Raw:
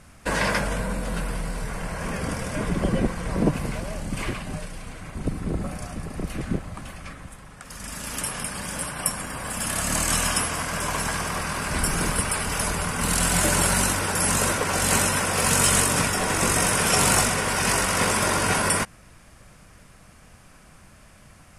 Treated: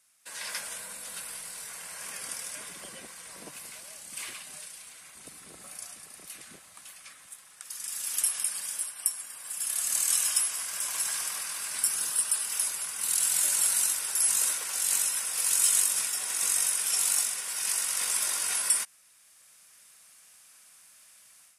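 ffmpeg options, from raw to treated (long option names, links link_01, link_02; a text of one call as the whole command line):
ffmpeg -i in.wav -filter_complex "[0:a]asettb=1/sr,asplit=3[link_01][link_02][link_03];[link_01]atrim=end=11.964[link_04];[link_02]atrim=start=11.96:end=12.43,asetpts=PTS-STARTPTS,afade=type=in:duration=0.004:curve=qsin,afade=type=out:start_time=0.466:duration=0.004:curve=qsin,bandreject=frequency=2200:width=5.2[link_05];[link_03]atrim=start=12.426[link_06];[link_04][link_05]acrossfade=duration=0.004:curve1=hsin:curve2=qsin[link_07];[link_07][link_06]acrossfade=duration=0.004:curve1=qsin:curve2=hsin,equalizer=frequency=3700:width_type=o:width=0.22:gain=3,dynaudnorm=framelen=330:gausssize=3:maxgain=11.5dB,aderivative,volume=-8.5dB" out.wav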